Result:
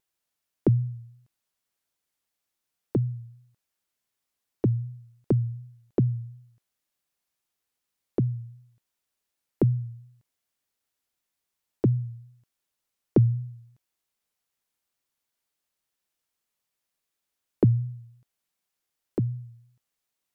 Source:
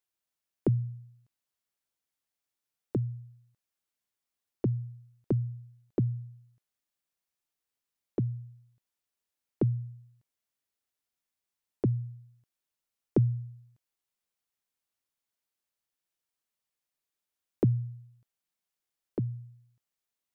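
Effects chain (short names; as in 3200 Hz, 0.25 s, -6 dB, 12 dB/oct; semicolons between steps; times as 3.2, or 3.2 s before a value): vibrato 2.7 Hz 46 cents; gain +5 dB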